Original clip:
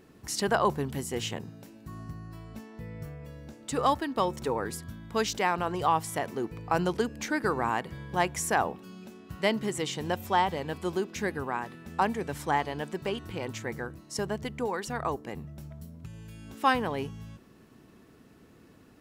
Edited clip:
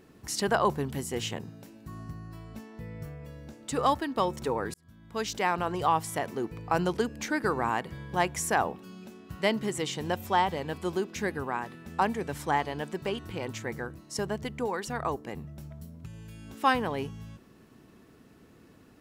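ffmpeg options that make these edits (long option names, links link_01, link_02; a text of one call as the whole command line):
ffmpeg -i in.wav -filter_complex "[0:a]asplit=2[link_01][link_02];[link_01]atrim=end=4.74,asetpts=PTS-STARTPTS,afade=type=out:start_time=4.736:duration=0.004:curve=hsin[link_03];[link_02]atrim=start=4.74,asetpts=PTS-STARTPTS,afade=type=in:duration=0.76[link_04];[link_03][link_04]concat=n=2:v=0:a=1" out.wav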